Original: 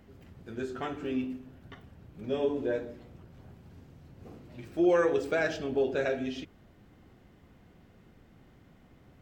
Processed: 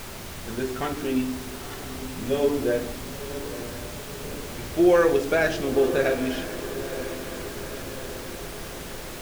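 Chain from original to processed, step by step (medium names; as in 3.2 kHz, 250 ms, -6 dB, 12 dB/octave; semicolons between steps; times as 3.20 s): added noise pink -44 dBFS; on a send: echo that smears into a reverb 960 ms, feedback 59%, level -12 dB; on the sum: trim +6.5 dB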